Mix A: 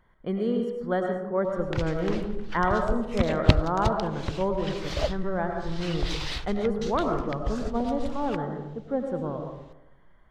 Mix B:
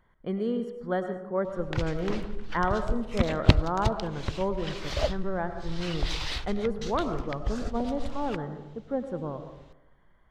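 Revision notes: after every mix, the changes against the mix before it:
speech: send −7.0 dB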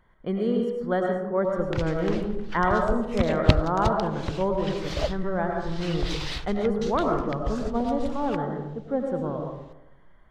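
speech: send +10.0 dB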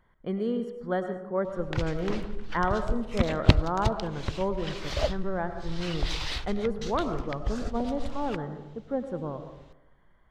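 speech: send −10.0 dB

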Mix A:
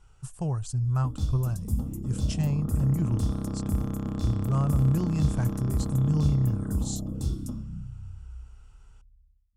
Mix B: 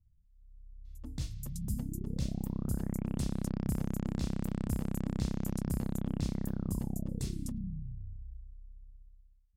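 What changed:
speech: muted
second sound: add parametric band 2,100 Hz +11.5 dB 0.97 octaves
reverb: off

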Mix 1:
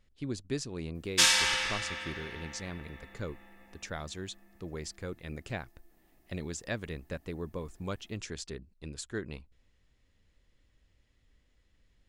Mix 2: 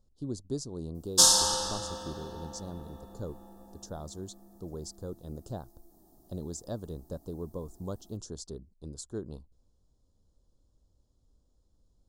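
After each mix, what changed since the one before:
background +7.5 dB
master: add Butterworth band-reject 2,200 Hz, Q 0.56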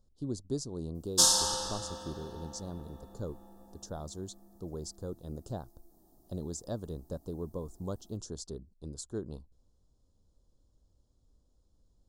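background −3.5 dB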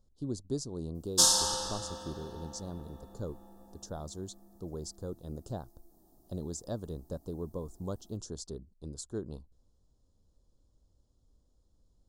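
nothing changed

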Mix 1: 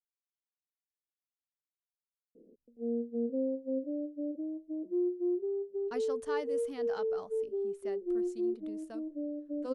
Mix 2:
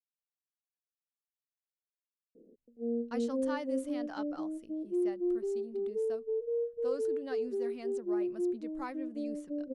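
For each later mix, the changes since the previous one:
speech: entry −2.80 s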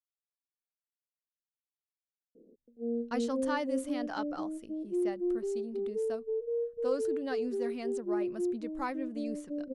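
speech +5.5 dB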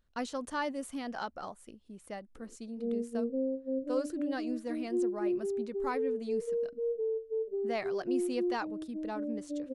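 speech: entry −2.95 s

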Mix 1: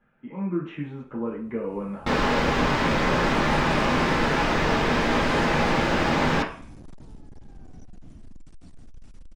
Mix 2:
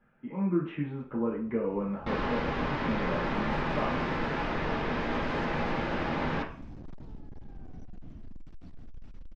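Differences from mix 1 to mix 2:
second sound −8.0 dB
master: add high-frequency loss of the air 190 metres

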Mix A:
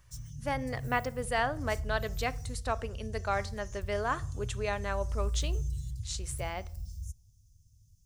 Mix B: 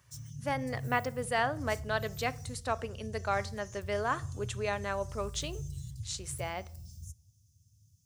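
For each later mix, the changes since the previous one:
background: send +7.0 dB
master: add high-pass filter 85 Hz 24 dB per octave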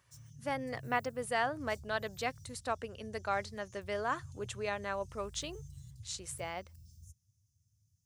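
background −8.0 dB
reverb: off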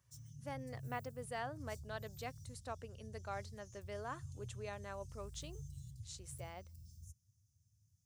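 speech −8.5 dB
master: add parametric band 1,900 Hz −4 dB 2.2 octaves

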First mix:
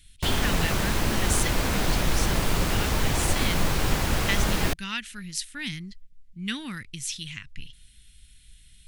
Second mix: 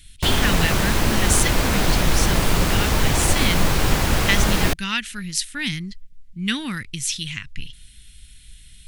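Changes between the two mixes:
speech +7.5 dB
background +5.5 dB

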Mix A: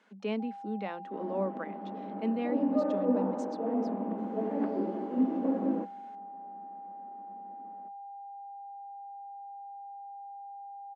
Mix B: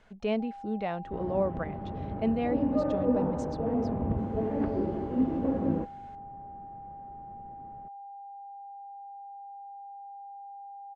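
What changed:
speech: add parametric band 680 Hz +10 dB 0.37 octaves
master: remove Chebyshev high-pass with heavy ripple 190 Hz, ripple 3 dB

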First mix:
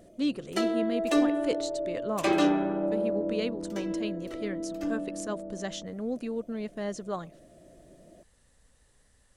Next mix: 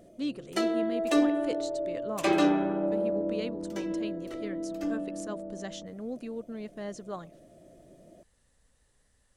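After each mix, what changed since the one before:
speech −4.5 dB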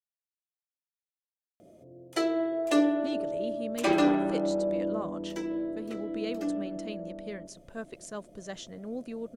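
speech: entry +2.85 s
background: entry +1.60 s

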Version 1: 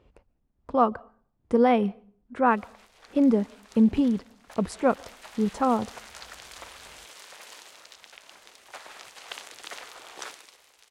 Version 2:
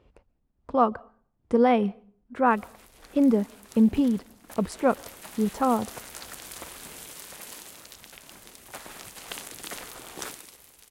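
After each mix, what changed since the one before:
background: remove three-way crossover with the lows and the highs turned down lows −17 dB, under 440 Hz, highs −16 dB, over 7,000 Hz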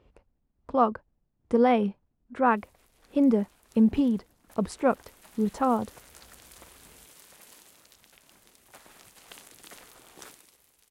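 background −9.5 dB
reverb: off

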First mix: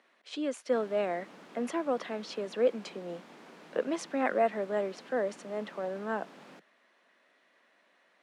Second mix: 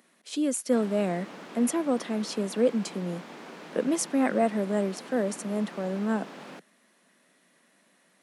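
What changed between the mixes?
speech: remove band-pass filter 440–3,400 Hz
background +8.5 dB

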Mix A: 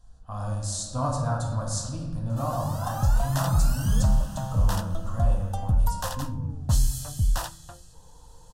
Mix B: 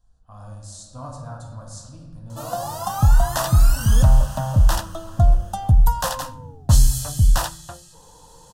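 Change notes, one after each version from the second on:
speech −8.5 dB
background +8.0 dB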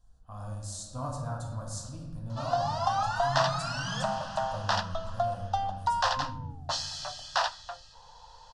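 background: add elliptic band-pass filter 660–5,000 Hz, stop band 60 dB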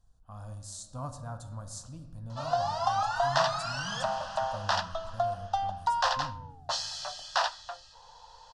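speech: send −9.5 dB

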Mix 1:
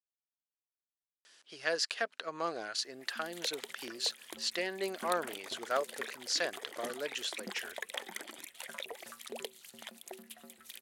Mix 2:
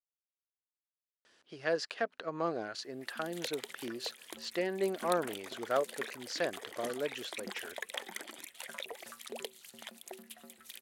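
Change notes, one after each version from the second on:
speech: add spectral tilt −3.5 dB per octave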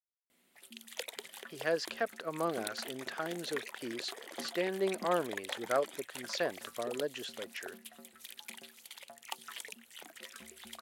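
background: entry −2.45 s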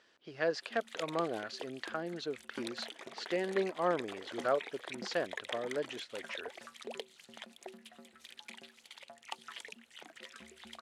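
speech: entry −1.25 s
master: add high-frequency loss of the air 75 metres

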